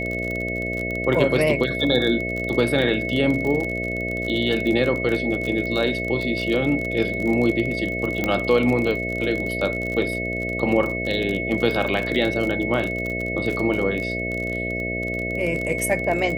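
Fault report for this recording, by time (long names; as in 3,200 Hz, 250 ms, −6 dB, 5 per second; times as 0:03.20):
mains buzz 60 Hz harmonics 11 −29 dBFS
surface crackle 38 per second −25 dBFS
whistle 2,200 Hz −27 dBFS
0:08.24: click −9 dBFS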